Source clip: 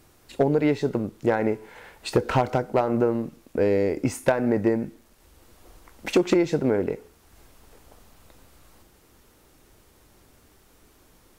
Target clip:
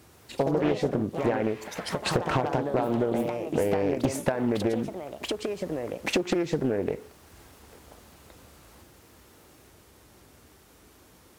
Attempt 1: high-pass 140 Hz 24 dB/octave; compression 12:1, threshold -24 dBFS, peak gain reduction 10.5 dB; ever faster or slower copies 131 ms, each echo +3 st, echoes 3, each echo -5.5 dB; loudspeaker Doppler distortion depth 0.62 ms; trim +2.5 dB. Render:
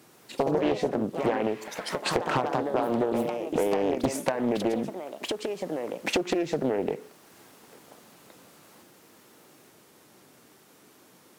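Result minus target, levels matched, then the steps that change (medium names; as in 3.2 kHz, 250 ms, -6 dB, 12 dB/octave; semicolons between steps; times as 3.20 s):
125 Hz band -5.5 dB
change: high-pass 52 Hz 24 dB/octave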